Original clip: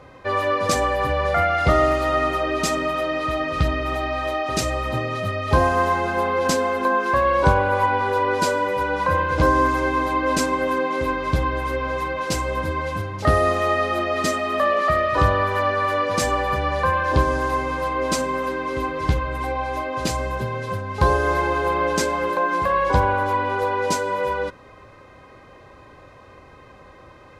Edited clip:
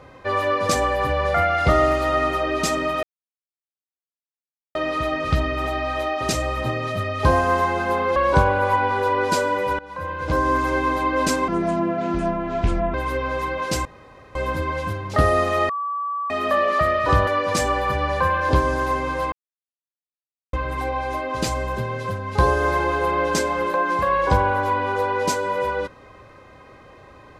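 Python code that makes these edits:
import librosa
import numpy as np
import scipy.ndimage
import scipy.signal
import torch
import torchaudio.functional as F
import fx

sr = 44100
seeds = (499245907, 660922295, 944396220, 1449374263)

y = fx.edit(x, sr, fx.insert_silence(at_s=3.03, length_s=1.72),
    fx.cut(start_s=6.44, length_s=0.82),
    fx.fade_in_from(start_s=8.89, length_s=0.94, floor_db=-20.5),
    fx.speed_span(start_s=10.58, length_s=0.95, speed=0.65),
    fx.insert_room_tone(at_s=12.44, length_s=0.5),
    fx.bleep(start_s=13.78, length_s=0.61, hz=1150.0, db=-23.0),
    fx.cut(start_s=15.36, length_s=0.54),
    fx.silence(start_s=17.95, length_s=1.21), tone=tone)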